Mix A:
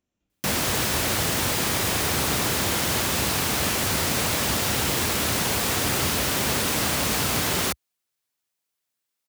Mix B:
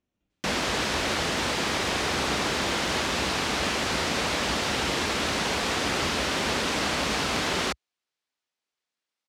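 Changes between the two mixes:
background: add bell 110 Hz -10.5 dB 0.99 oct; master: add LPF 5100 Hz 12 dB/oct

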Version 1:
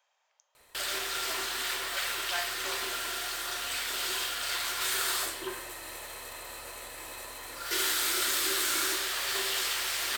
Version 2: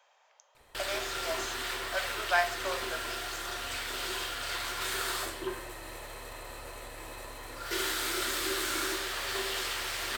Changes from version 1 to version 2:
speech +10.5 dB; master: add tilt -2 dB/oct

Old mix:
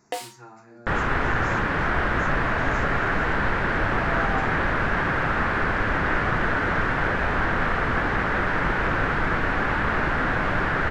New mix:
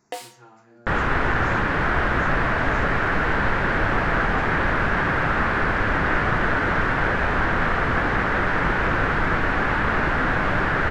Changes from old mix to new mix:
speech -4.0 dB; first sound -4.0 dB; reverb: on, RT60 1.4 s

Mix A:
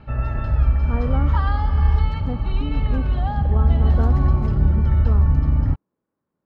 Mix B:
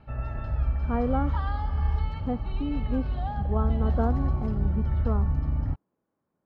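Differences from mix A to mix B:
background -9.0 dB; master: add bell 720 Hz +4.5 dB 0.44 oct

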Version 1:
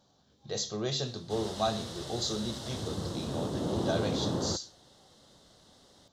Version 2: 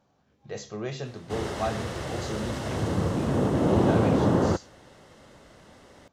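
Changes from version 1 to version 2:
background +10.0 dB; master: add resonant high shelf 3000 Hz -7 dB, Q 3

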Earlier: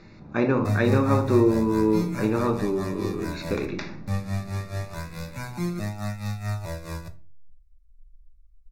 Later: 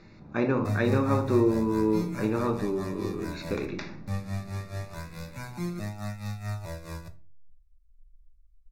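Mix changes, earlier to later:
speech -3.5 dB; background -4.5 dB

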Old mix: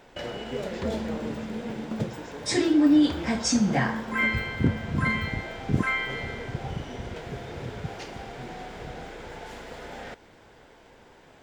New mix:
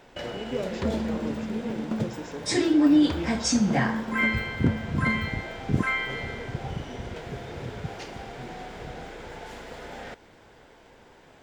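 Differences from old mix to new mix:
speech +4.5 dB; second sound +3.5 dB

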